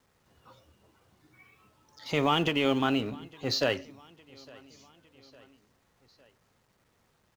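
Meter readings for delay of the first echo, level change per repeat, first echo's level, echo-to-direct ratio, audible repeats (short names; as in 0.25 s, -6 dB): 0.857 s, -5.5 dB, -24.0 dB, -22.5 dB, 3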